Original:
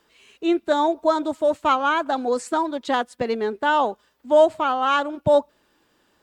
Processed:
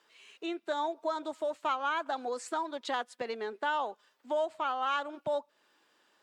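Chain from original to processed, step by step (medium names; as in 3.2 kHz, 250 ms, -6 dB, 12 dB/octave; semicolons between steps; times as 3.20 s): compression 2.5:1, threshold -27 dBFS, peak gain reduction 11 dB; frequency weighting A; trim -4 dB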